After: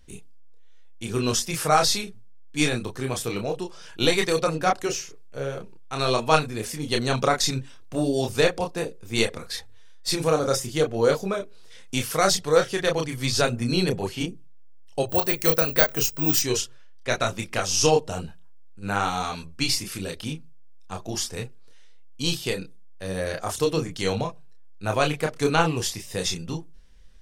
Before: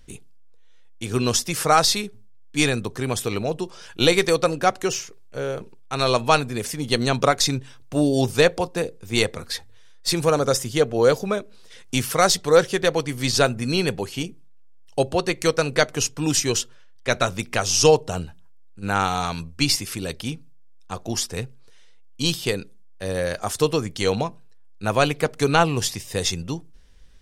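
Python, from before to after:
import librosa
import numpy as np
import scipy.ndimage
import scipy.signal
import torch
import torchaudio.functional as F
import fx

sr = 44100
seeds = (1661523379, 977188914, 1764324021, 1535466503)

y = fx.resample_bad(x, sr, factor=2, down='filtered', up='zero_stuff', at=(15.09, 16.39))
y = fx.chorus_voices(y, sr, voices=4, hz=0.8, base_ms=29, depth_ms=3.4, mix_pct=40)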